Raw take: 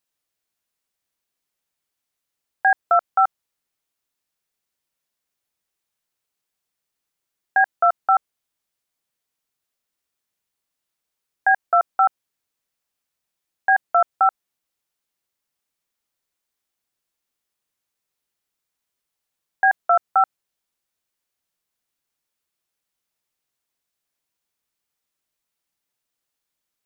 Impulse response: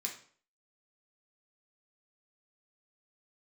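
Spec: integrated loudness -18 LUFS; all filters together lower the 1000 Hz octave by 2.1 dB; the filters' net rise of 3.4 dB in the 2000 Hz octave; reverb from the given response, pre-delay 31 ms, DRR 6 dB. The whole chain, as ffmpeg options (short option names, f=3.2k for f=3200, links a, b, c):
-filter_complex "[0:a]equalizer=f=1k:t=o:g=-6.5,equalizer=f=2k:t=o:g=7.5,asplit=2[a][b];[1:a]atrim=start_sample=2205,adelay=31[c];[b][c]afir=irnorm=-1:irlink=0,volume=-6dB[d];[a][d]amix=inputs=2:normalize=0,volume=2dB"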